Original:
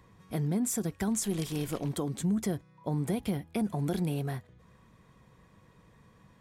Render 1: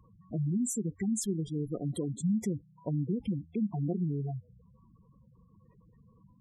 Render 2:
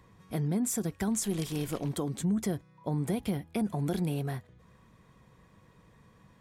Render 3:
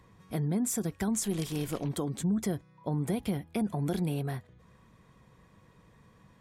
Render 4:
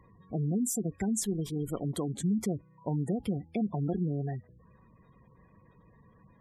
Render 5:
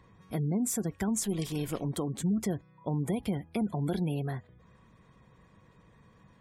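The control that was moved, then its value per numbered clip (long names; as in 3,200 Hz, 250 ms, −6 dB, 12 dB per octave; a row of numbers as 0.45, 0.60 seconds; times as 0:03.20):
gate on every frequency bin, under each frame's peak: −10, −60, −50, −20, −35 decibels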